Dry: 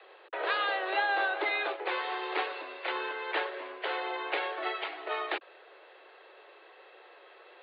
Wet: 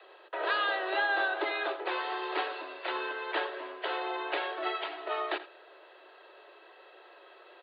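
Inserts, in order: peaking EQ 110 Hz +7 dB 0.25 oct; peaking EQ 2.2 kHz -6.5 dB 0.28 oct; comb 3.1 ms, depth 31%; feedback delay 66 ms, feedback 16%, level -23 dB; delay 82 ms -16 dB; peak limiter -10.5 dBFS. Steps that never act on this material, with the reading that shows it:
peaking EQ 110 Hz: input has nothing below 270 Hz; peak limiter -10.5 dBFS: peak at its input -16.5 dBFS

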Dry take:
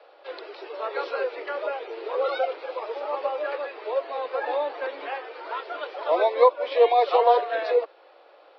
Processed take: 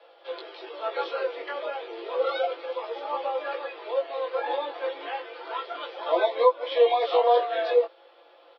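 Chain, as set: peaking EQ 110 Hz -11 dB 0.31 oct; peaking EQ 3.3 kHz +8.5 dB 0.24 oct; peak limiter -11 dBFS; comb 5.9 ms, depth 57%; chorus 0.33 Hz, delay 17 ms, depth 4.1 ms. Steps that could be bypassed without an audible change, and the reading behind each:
peaking EQ 110 Hz: input has nothing below 270 Hz

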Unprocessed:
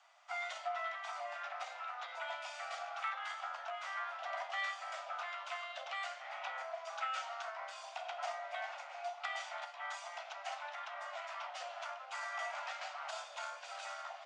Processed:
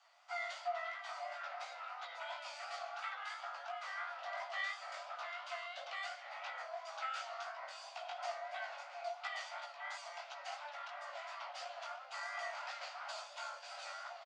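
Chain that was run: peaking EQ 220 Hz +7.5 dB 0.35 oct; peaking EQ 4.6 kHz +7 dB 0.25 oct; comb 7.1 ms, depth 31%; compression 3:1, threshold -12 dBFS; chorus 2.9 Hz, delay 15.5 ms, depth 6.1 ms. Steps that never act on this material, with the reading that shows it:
peaking EQ 220 Hz: input has nothing below 510 Hz; compression, threshold -12 dBFS: peak at its input -25.0 dBFS

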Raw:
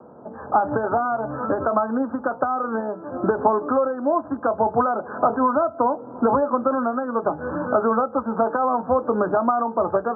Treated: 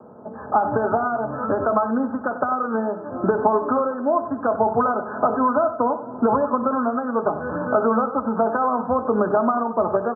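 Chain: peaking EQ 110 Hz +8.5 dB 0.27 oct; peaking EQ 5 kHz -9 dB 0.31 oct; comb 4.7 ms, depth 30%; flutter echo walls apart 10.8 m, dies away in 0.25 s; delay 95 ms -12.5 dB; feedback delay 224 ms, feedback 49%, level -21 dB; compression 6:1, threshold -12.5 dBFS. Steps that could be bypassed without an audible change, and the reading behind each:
peaking EQ 5 kHz: input has nothing above 1.6 kHz

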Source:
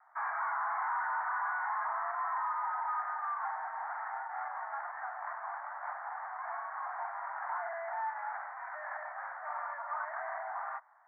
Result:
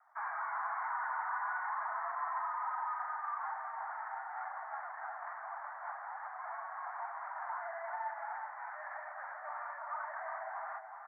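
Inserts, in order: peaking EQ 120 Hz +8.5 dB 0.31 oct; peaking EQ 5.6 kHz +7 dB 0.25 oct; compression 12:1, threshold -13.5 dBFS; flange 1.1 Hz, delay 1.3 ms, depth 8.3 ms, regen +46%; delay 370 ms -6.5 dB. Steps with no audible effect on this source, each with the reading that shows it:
peaking EQ 120 Hz: input has nothing below 540 Hz; peaking EQ 5.6 kHz: input has nothing above 2.3 kHz; compression, threshold -13.5 dBFS: peak at its input -24.0 dBFS

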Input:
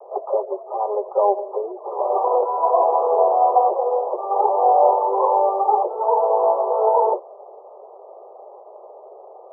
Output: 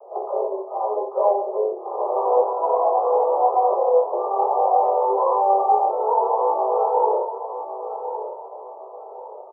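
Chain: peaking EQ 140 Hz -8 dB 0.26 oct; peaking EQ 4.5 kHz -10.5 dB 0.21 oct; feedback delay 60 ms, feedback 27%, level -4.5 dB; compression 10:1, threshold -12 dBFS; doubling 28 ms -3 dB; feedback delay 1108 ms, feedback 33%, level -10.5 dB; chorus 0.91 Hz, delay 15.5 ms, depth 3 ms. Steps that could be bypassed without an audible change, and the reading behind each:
peaking EQ 140 Hz: input has nothing below 320 Hz; peaking EQ 4.5 kHz: input has nothing above 1.3 kHz

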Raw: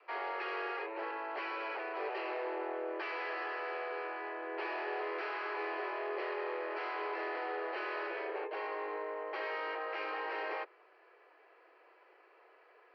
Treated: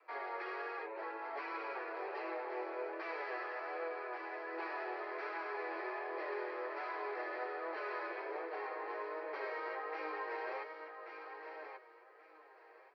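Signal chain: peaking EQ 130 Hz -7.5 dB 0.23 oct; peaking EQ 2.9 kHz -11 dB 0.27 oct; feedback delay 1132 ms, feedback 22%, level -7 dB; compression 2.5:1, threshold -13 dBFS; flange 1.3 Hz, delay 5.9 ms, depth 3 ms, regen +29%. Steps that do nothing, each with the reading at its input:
peaking EQ 130 Hz: input has nothing below 300 Hz; compression, threshold -13 dBFS: peak at its input -24.5 dBFS

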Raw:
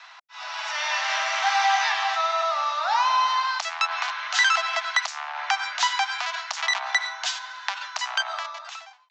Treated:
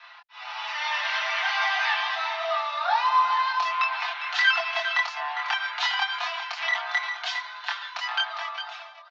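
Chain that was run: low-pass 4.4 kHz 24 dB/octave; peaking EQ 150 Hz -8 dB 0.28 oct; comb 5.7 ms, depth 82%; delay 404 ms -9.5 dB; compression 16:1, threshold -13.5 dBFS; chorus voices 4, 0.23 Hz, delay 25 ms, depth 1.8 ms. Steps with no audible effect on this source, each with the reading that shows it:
peaking EQ 150 Hz: input has nothing below 570 Hz

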